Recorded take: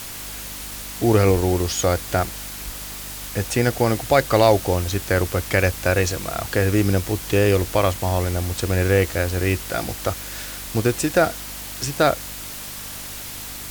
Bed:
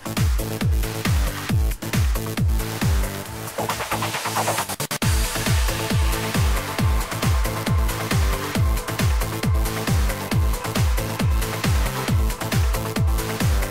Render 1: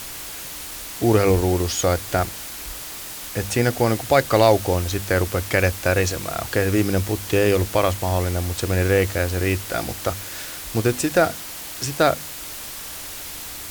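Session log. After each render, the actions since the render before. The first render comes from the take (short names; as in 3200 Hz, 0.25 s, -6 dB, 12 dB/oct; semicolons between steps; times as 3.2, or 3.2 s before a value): de-hum 50 Hz, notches 5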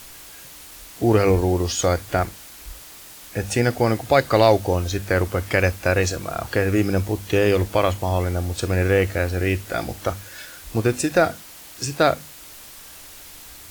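noise print and reduce 8 dB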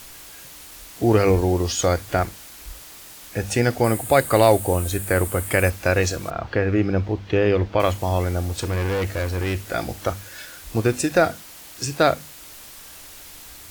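3.84–5.7 resonant high shelf 7100 Hz +8 dB, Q 3; 6.3–7.8 air absorption 220 m; 8.48–9.63 hard clip -20.5 dBFS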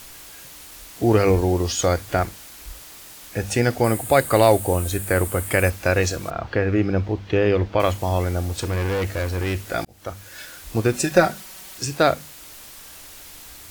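9.85–10.42 fade in; 10.94–11.78 comb 5.3 ms, depth 73%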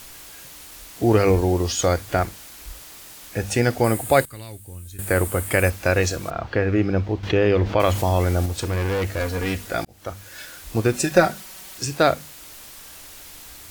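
4.25–4.99 passive tone stack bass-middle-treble 6-0-2; 7.23–8.46 fast leveller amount 50%; 9.2–9.67 comb 4.2 ms, depth 70%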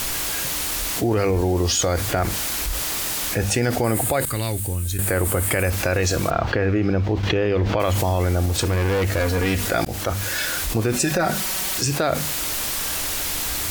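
limiter -13.5 dBFS, peak gain reduction 11 dB; fast leveller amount 70%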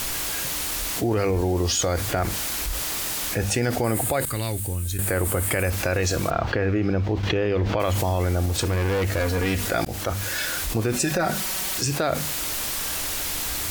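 gain -2.5 dB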